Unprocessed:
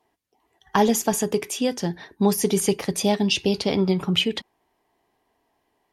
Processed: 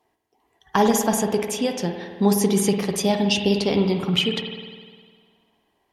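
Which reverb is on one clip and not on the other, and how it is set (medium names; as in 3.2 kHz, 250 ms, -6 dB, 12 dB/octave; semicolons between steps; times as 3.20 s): spring tank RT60 1.7 s, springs 50 ms, chirp 40 ms, DRR 4.5 dB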